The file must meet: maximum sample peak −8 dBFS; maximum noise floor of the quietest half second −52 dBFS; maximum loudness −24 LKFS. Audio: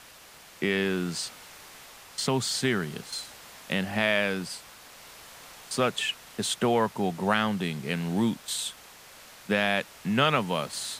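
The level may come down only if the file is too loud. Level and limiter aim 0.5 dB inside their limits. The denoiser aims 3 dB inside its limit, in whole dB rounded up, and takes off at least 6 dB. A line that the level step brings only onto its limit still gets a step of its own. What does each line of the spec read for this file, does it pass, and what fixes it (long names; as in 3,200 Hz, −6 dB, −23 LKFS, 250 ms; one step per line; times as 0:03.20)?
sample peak −7.5 dBFS: out of spec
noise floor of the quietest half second −51 dBFS: out of spec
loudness −28.0 LKFS: in spec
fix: broadband denoise 6 dB, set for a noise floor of −51 dBFS
brickwall limiter −8.5 dBFS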